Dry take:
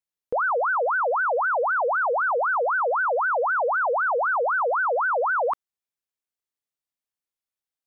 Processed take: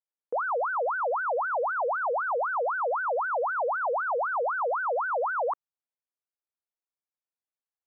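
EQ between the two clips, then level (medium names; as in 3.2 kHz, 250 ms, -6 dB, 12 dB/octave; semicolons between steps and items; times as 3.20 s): high-pass 380 Hz; low-pass 1.3 kHz 12 dB/octave; -3.0 dB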